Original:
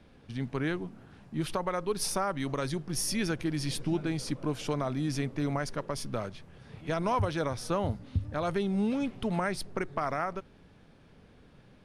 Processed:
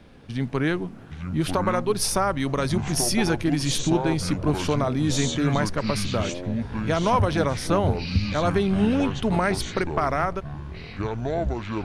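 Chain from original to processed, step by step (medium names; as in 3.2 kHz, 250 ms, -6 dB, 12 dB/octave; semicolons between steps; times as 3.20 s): ever faster or slower copies 672 ms, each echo -7 st, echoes 3, each echo -6 dB; trim +7.5 dB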